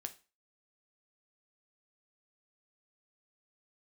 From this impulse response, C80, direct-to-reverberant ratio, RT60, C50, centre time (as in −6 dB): 22.0 dB, 7.0 dB, 0.30 s, 16.0 dB, 5 ms